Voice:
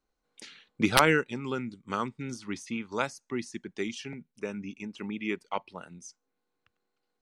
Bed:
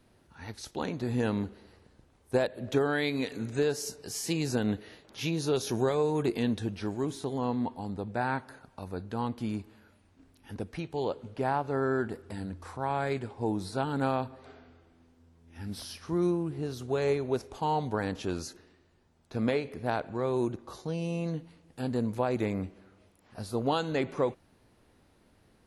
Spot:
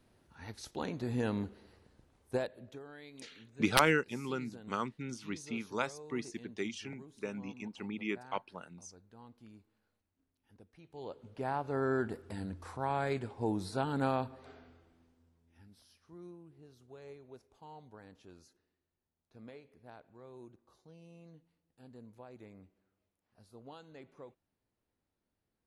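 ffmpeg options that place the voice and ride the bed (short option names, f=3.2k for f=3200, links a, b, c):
-filter_complex "[0:a]adelay=2800,volume=-4.5dB[a];[1:a]volume=15dB,afade=t=out:st=2.2:d=0.57:silence=0.125893,afade=t=in:st=10.79:d=1.14:silence=0.105925,afade=t=out:st=14.64:d=1.06:silence=0.1[b];[a][b]amix=inputs=2:normalize=0"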